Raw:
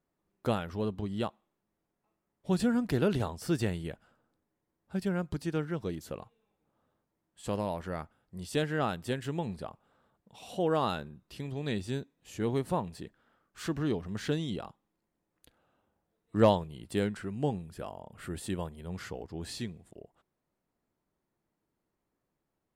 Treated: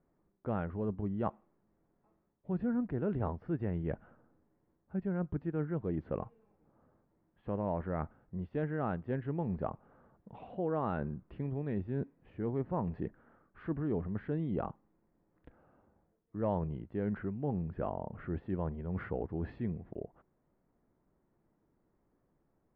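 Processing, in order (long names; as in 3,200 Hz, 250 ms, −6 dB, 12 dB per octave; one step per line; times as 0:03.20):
low-pass filter 2,100 Hz 24 dB per octave
spectral tilt −3 dB per octave
reversed playback
downward compressor 6 to 1, threshold −34 dBFS, peak gain reduction 20.5 dB
reversed playback
low-shelf EQ 140 Hz −9 dB
level +5 dB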